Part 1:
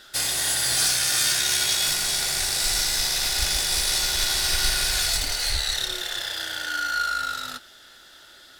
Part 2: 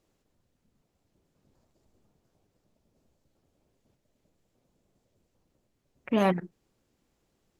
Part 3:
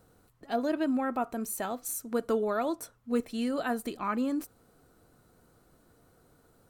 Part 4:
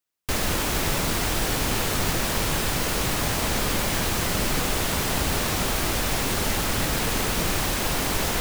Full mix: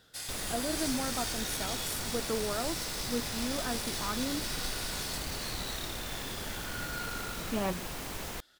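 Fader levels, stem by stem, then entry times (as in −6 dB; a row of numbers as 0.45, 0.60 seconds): −15.5, −8.5, −5.5, −14.5 decibels; 0.00, 1.40, 0.00, 0.00 seconds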